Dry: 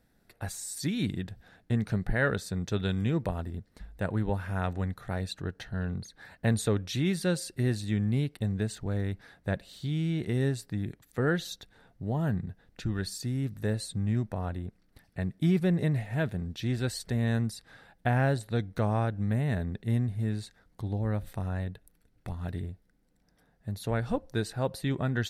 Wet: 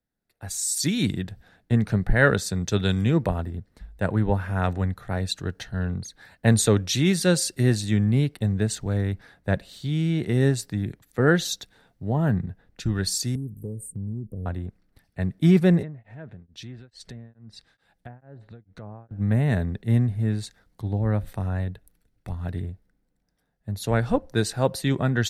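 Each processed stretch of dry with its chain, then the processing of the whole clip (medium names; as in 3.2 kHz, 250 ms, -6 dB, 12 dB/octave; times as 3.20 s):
13.35–14.46 s: Chebyshev band-stop 470–9100 Hz, order 4 + compression 5:1, threshold -32 dBFS
15.82–19.11 s: low-pass that closes with the level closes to 1.4 kHz, closed at -23 dBFS + compression 5:1, threshold -38 dBFS + tremolo of two beating tones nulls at 2.3 Hz
whole clip: dynamic bell 6.5 kHz, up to +5 dB, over -53 dBFS, Q 1.5; level rider gain up to 8.5 dB; three bands expanded up and down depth 40%; trim -2 dB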